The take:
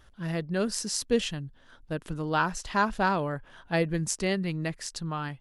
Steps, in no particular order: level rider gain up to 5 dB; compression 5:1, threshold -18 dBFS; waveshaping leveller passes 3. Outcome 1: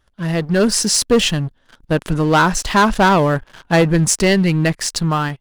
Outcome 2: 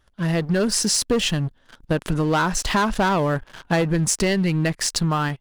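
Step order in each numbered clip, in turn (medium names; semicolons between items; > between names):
compression > waveshaping leveller > level rider; waveshaping leveller > level rider > compression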